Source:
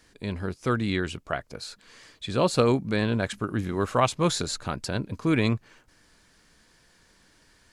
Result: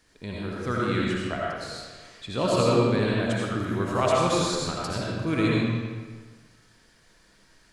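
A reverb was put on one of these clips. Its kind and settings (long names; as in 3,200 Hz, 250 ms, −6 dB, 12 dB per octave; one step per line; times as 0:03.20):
comb and all-pass reverb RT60 1.5 s, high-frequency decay 0.8×, pre-delay 40 ms, DRR −4.5 dB
level −4.5 dB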